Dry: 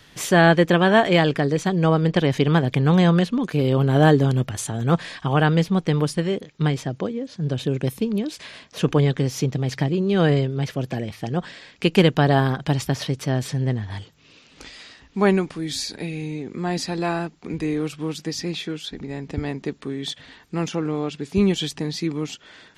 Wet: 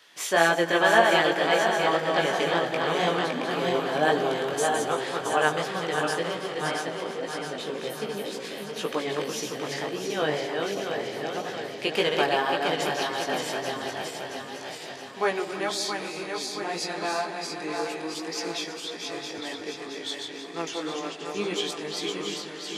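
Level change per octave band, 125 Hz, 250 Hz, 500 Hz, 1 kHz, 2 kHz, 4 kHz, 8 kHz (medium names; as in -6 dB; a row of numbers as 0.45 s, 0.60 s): -20.0 dB, -11.5 dB, -3.0 dB, 0.0 dB, +0.5 dB, 0.0 dB, 0.0 dB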